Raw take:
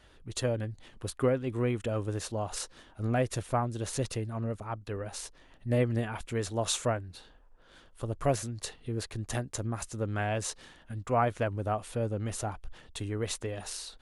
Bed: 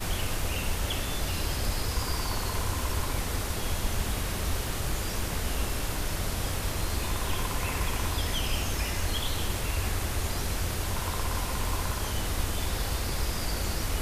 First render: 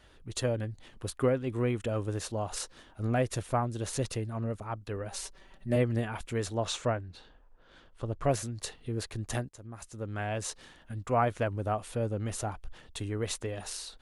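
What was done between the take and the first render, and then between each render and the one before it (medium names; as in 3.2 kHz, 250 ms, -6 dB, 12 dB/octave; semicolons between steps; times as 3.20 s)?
5.11–5.76 s: comb 5.2 ms; 6.54–8.31 s: distance through air 82 m; 9.49–11.08 s: fade in equal-power, from -20 dB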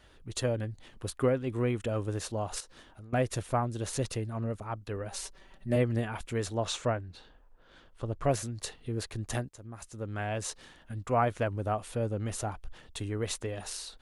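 2.60–3.13 s: compression 16:1, threshold -44 dBFS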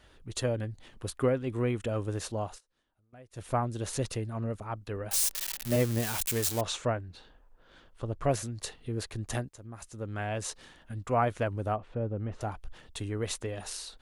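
2.44–3.48 s: dip -24 dB, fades 0.15 s; 5.11–6.61 s: zero-crossing glitches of -22 dBFS; 11.76–12.41 s: tape spacing loss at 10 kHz 40 dB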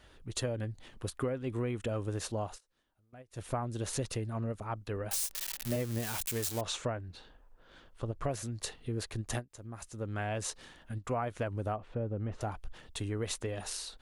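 compression, threshold -30 dBFS, peak gain reduction 9 dB; endings held to a fixed fall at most 400 dB/s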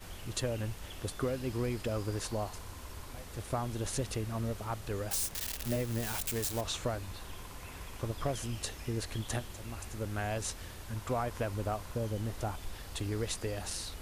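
add bed -16 dB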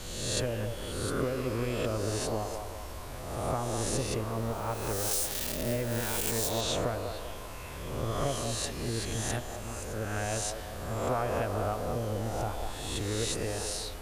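reverse spectral sustain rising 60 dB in 1.23 s; on a send: feedback echo behind a band-pass 195 ms, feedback 49%, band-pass 680 Hz, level -5 dB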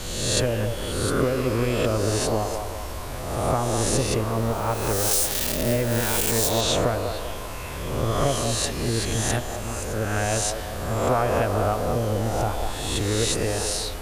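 trim +8.5 dB; peak limiter -1 dBFS, peak gain reduction 2.5 dB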